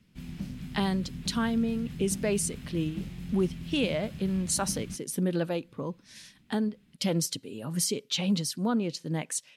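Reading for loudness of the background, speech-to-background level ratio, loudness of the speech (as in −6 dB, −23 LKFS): −40.0 LKFS, 9.5 dB, −30.5 LKFS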